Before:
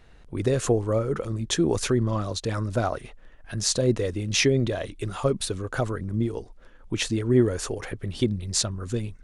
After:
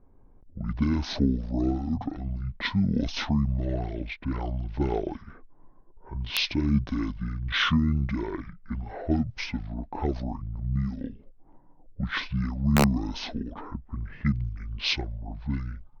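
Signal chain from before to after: level-controlled noise filter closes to 970 Hz, open at -20 dBFS; speed mistake 78 rpm record played at 45 rpm; integer overflow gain 9.5 dB; trim -2.5 dB

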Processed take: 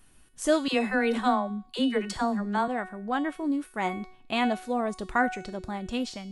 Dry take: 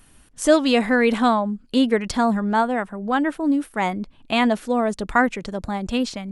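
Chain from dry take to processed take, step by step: feedback comb 370 Hz, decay 0.58 s, mix 80%; 0.68–2.68 s: phase dispersion lows, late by 63 ms, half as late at 420 Hz; trim +5.5 dB

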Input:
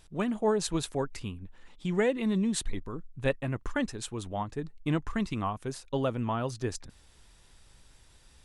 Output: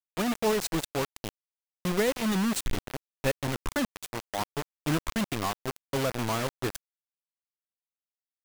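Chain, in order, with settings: bit crusher 5-bit

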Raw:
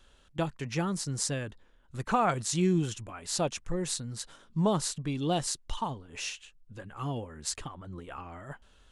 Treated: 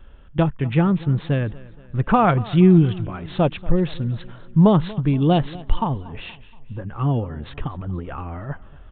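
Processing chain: local Wiener filter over 9 samples; bass shelf 230 Hz +9.5 dB; resampled via 8 kHz; 6.16–6.86 s: peaking EQ 2.5 kHz -6 dB 1.7 oct; feedback delay 236 ms, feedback 50%, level -20 dB; trim +8.5 dB

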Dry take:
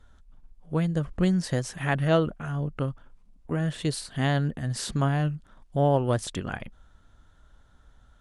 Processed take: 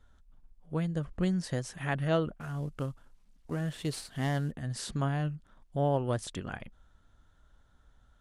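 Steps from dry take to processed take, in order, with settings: 2.40–4.52 s: CVSD coder 64 kbps; trim -6 dB

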